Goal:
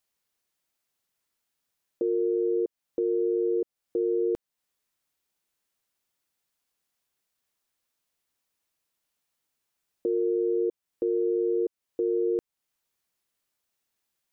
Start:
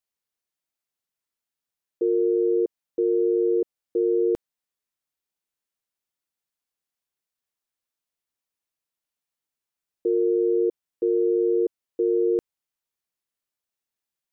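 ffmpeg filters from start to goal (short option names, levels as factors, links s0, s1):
-af "alimiter=level_in=1.33:limit=0.0631:level=0:latency=1:release=339,volume=0.75,volume=2.24"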